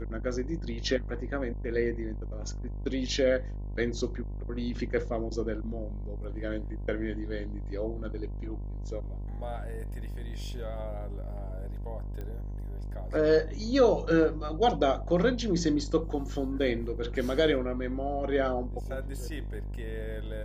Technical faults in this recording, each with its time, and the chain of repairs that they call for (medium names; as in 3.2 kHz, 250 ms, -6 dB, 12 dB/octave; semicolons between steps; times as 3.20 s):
buzz 50 Hz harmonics 21 -36 dBFS
12.21 s: pop -27 dBFS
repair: de-click; de-hum 50 Hz, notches 21